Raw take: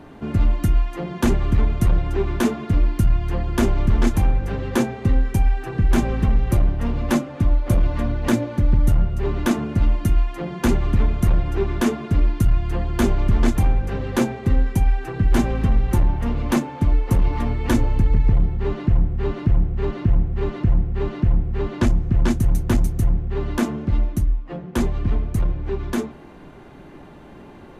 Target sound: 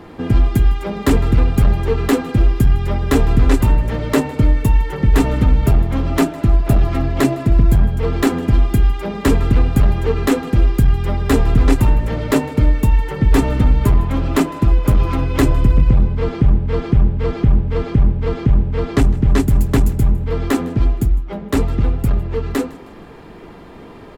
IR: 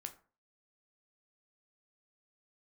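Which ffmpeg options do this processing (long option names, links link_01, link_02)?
-af "asetrate=50715,aresample=44100,aecho=1:1:157|314|471:0.0841|0.0345|0.0141,volume=4.5dB"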